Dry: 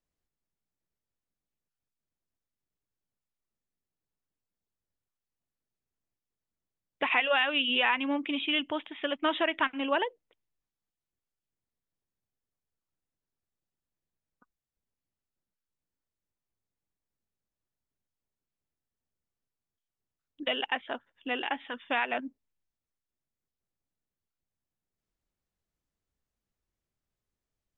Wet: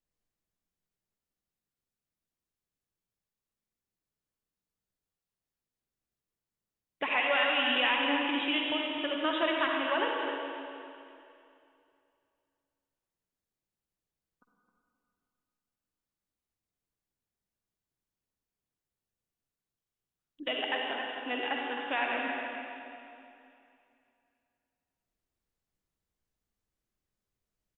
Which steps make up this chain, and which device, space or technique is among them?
cave (single-tap delay 265 ms −8.5 dB; convolution reverb RT60 2.6 s, pre-delay 48 ms, DRR −0.5 dB)
level −3.5 dB

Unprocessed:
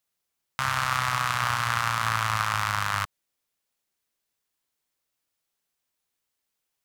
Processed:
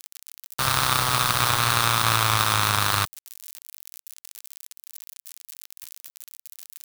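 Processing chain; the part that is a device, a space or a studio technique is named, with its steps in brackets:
budget class-D amplifier (gap after every zero crossing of 0.21 ms; spike at every zero crossing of −20 dBFS)
level +6 dB

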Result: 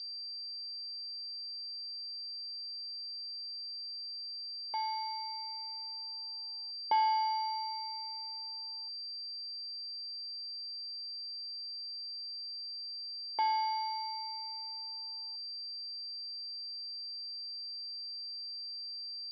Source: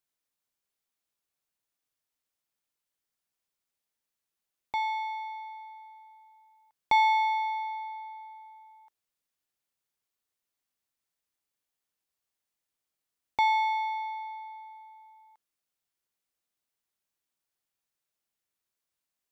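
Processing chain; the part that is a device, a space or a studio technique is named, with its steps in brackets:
0:06.13–0:07.72: spectral tilt −2 dB per octave
toy sound module (linearly interpolated sample-rate reduction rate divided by 6×; switching amplifier with a slow clock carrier 4,700 Hz; loudspeaker in its box 570–4,700 Hz, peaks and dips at 800 Hz −5 dB, 1,300 Hz −9 dB, 1,800 Hz −9 dB, 2,600 Hz −9 dB)

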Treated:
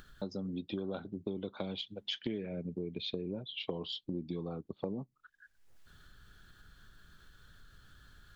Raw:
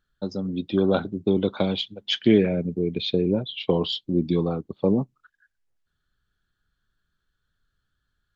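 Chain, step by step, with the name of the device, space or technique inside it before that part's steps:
upward and downward compression (upward compression, threshold −35 dBFS; downward compressor 6 to 1, threshold −32 dBFS, peak gain reduction 18.5 dB)
level −3.5 dB

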